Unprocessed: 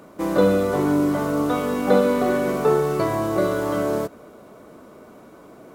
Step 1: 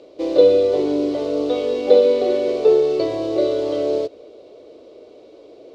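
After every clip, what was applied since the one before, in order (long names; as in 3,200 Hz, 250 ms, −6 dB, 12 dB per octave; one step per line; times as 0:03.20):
drawn EQ curve 110 Hz 0 dB, 190 Hz −12 dB, 310 Hz +8 dB, 500 Hz +15 dB, 970 Hz −4 dB, 1,500 Hz −8 dB, 2,600 Hz +9 dB, 4,300 Hz +15 dB, 15,000 Hz −25 dB
level −7.5 dB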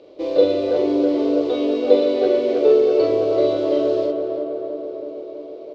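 low-pass filter 5,100 Hz 12 dB per octave
double-tracking delay 44 ms −3 dB
on a send: tape delay 325 ms, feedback 78%, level −4.5 dB, low-pass 1,600 Hz
on the sum: level −2 dB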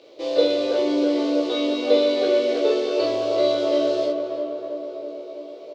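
spectral tilt +3 dB per octave
double-tracking delay 17 ms −2.5 dB
level −1.5 dB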